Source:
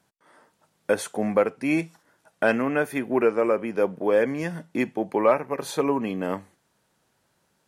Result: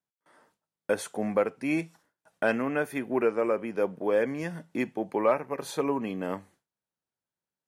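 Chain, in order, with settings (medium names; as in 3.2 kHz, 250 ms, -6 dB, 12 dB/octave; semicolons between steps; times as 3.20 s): gate with hold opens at -49 dBFS; trim -4.5 dB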